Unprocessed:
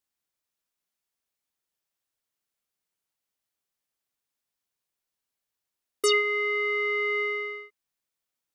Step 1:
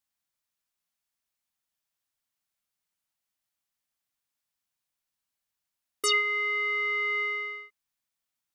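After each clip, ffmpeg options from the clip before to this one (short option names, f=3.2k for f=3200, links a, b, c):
-af "equalizer=f=420:t=o:w=0.71:g=-9.5"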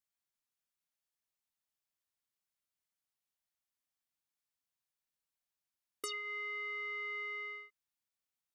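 -af "acompressor=threshold=-31dB:ratio=10,volume=-7dB"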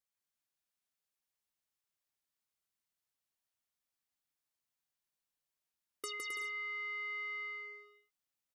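-af "aecho=1:1:160|264|331.6|375.5|404.1:0.631|0.398|0.251|0.158|0.1,volume=-2dB"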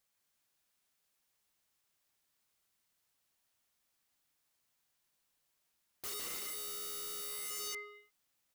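-filter_complex "[0:a]asplit=2[a][b];[b]alimiter=level_in=10.5dB:limit=-24dB:level=0:latency=1:release=499,volume=-10.5dB,volume=-0.5dB[c];[a][c]amix=inputs=2:normalize=0,aeval=exprs='(mod(112*val(0)+1,2)-1)/112':c=same,volume=4dB"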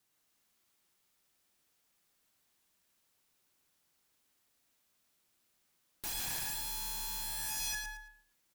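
-af "afreqshift=-380,aecho=1:1:111|222|333:0.501|0.125|0.0313,volume=3dB"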